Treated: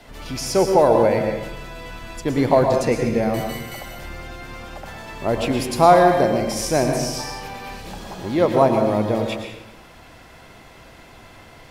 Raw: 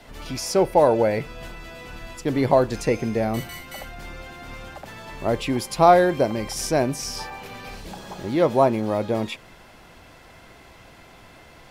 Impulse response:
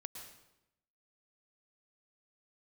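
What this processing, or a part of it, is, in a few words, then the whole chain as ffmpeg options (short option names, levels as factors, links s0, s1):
bathroom: -filter_complex "[1:a]atrim=start_sample=2205[s0];[0:a][s0]afir=irnorm=-1:irlink=0,volume=2.11"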